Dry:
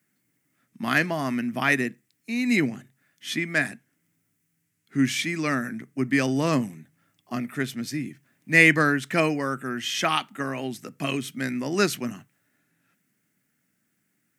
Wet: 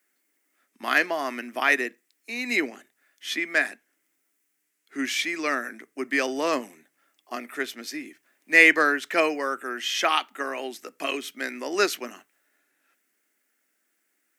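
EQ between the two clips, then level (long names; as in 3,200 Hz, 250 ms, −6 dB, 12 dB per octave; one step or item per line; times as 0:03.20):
high-pass filter 350 Hz 24 dB per octave
dynamic equaliser 9,000 Hz, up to −5 dB, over −51 dBFS, Q 1.6
+1.5 dB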